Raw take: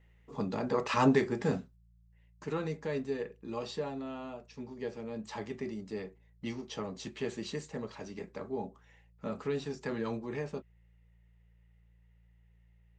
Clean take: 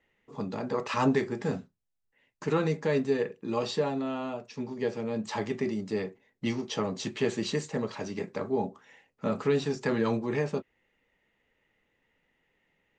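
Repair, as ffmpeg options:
-af "bandreject=f=57.2:t=h:w=4,bandreject=f=114.4:t=h:w=4,bandreject=f=171.6:t=h:w=4,asetnsamples=n=441:p=0,asendcmd='1.76 volume volume 8dB',volume=0dB"

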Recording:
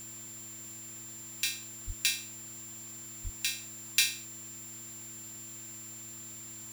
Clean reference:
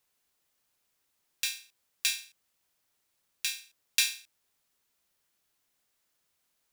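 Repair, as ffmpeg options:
-filter_complex "[0:a]bandreject=f=109.7:t=h:w=4,bandreject=f=219.4:t=h:w=4,bandreject=f=329.1:t=h:w=4,bandreject=f=7.3k:w=30,asplit=3[a][b][c];[a]afade=t=out:st=1.86:d=0.02[d];[b]highpass=f=140:w=0.5412,highpass=f=140:w=1.3066,afade=t=in:st=1.86:d=0.02,afade=t=out:st=1.98:d=0.02[e];[c]afade=t=in:st=1.98:d=0.02[f];[d][e][f]amix=inputs=3:normalize=0,asplit=3[g][h][i];[g]afade=t=out:st=3.23:d=0.02[j];[h]highpass=f=140:w=0.5412,highpass=f=140:w=1.3066,afade=t=in:st=3.23:d=0.02,afade=t=out:st=3.35:d=0.02[k];[i]afade=t=in:st=3.35:d=0.02[l];[j][k][l]amix=inputs=3:normalize=0,afftdn=nr=30:nf=-46"

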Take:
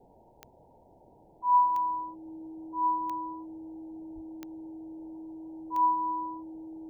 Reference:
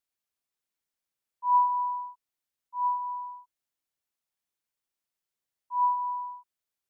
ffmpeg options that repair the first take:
-filter_complex "[0:a]adeclick=t=4,bandreject=f=320:w=30,asplit=3[a][b][c];[a]afade=t=out:st=4.14:d=0.02[d];[b]highpass=f=140:w=0.5412,highpass=f=140:w=1.3066,afade=t=in:st=4.14:d=0.02,afade=t=out:st=4.26:d=0.02[e];[c]afade=t=in:st=4.26:d=0.02[f];[d][e][f]amix=inputs=3:normalize=0,afwtdn=0.0056"

